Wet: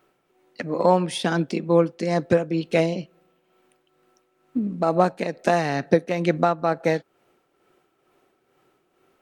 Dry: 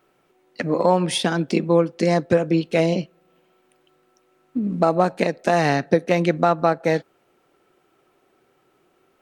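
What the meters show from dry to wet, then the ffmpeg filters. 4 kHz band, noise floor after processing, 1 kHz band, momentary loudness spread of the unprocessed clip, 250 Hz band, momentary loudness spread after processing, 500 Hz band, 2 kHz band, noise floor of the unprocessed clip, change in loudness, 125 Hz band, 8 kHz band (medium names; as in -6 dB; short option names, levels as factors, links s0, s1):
-4.5 dB, -69 dBFS, -2.0 dB, 7 LU, -2.5 dB, 8 LU, -2.0 dB, -2.5 dB, -64 dBFS, -2.0 dB, -2.5 dB, -5.0 dB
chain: -af "tremolo=f=2.2:d=0.53"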